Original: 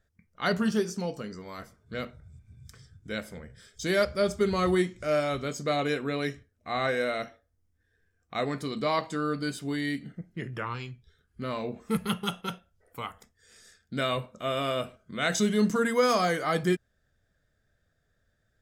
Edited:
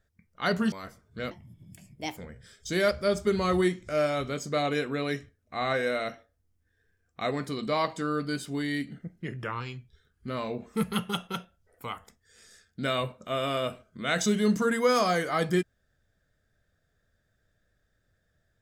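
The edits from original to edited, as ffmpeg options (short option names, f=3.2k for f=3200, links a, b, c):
-filter_complex "[0:a]asplit=4[a][b][c][d];[a]atrim=end=0.722[e];[b]atrim=start=1.468:end=2.064[f];[c]atrim=start=2.06:end=3.31,asetpts=PTS-STARTPTS,asetrate=63945,aresample=44100,atrim=end_sample=38017,asetpts=PTS-STARTPTS[g];[d]atrim=start=3.306[h];[e][f]acrossfade=d=0.004:c1=hsin:c2=hsin[i];[i][g]acrossfade=d=0.004:c1=hsin:c2=hsin[j];[j][h]acrossfade=d=0.004:c1=hsin:c2=hsin"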